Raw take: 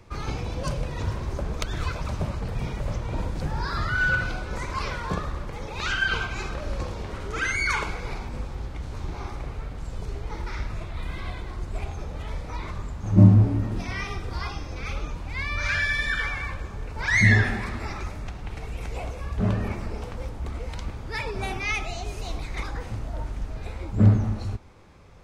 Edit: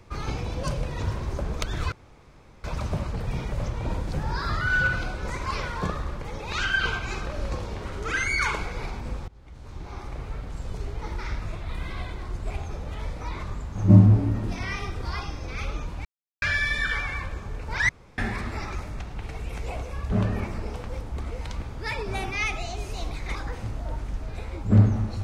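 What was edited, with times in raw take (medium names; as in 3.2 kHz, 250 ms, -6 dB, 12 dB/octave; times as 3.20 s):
1.92 s: insert room tone 0.72 s
8.56–9.61 s: fade in, from -24 dB
15.33–15.70 s: mute
17.17–17.46 s: room tone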